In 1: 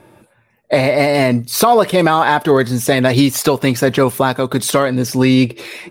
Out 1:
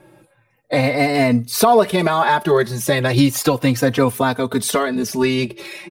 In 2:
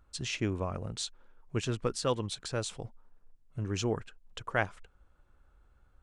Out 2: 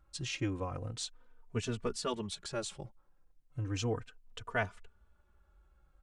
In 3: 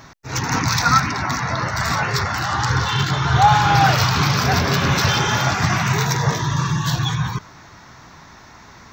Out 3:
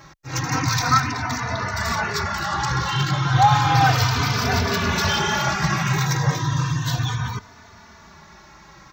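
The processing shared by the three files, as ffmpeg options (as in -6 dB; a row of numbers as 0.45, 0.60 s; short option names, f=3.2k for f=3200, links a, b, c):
-filter_complex "[0:a]asplit=2[a][b];[b]adelay=3.2,afreqshift=-0.34[c];[a][c]amix=inputs=2:normalize=1"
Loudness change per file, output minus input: -3.0, -3.5, -2.5 LU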